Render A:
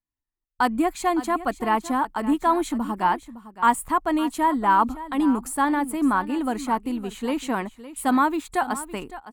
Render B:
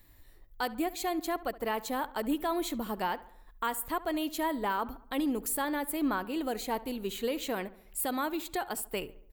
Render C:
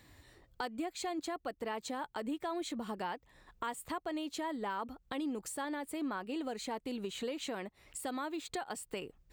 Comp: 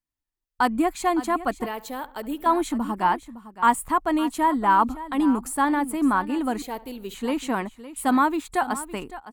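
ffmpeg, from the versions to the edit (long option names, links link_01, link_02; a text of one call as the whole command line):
ffmpeg -i take0.wav -i take1.wav -filter_complex "[1:a]asplit=2[link_01][link_02];[0:a]asplit=3[link_03][link_04][link_05];[link_03]atrim=end=1.662[link_06];[link_01]atrim=start=1.658:end=2.462[link_07];[link_04]atrim=start=2.458:end=6.622[link_08];[link_02]atrim=start=6.618:end=7.142[link_09];[link_05]atrim=start=7.138[link_10];[link_06][link_07]acrossfade=duration=0.004:curve1=hsin:curve2=hsin[link_11];[link_11][link_08]acrossfade=duration=0.004:curve1=hsin:curve2=hsin[link_12];[link_12][link_09]acrossfade=duration=0.004:curve1=hsin:curve2=hsin[link_13];[link_13][link_10]acrossfade=duration=0.004:curve1=hsin:curve2=hsin" out.wav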